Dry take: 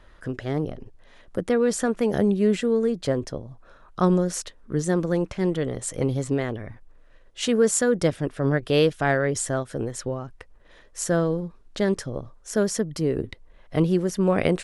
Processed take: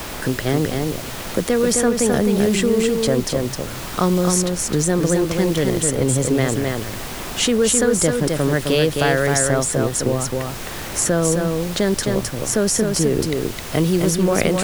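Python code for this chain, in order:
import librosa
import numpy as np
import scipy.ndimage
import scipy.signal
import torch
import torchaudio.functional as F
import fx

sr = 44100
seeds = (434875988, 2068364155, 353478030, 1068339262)

p1 = fx.high_shelf(x, sr, hz=6700.0, db=11.5)
p2 = fx.over_compress(p1, sr, threshold_db=-25.0, ratio=-1.0)
p3 = p1 + (p2 * 10.0 ** (-1.5 / 20.0))
p4 = fx.dmg_noise_colour(p3, sr, seeds[0], colour='pink', level_db=-36.0)
p5 = p4 + 10.0 ** (-4.5 / 20.0) * np.pad(p4, (int(261 * sr / 1000.0), 0))[:len(p4)]
y = fx.band_squash(p5, sr, depth_pct=40)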